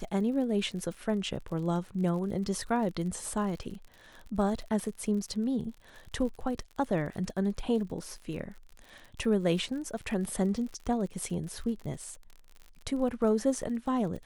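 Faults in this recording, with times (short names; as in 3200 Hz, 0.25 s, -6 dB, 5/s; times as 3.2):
crackle 52/s -39 dBFS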